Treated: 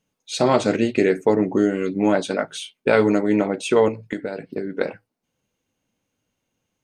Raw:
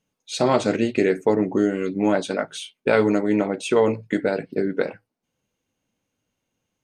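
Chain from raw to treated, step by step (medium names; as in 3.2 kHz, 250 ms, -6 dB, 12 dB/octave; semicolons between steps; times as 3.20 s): 3.88–4.81 s: compression 10:1, threshold -25 dBFS, peak gain reduction 9.5 dB; trim +1.5 dB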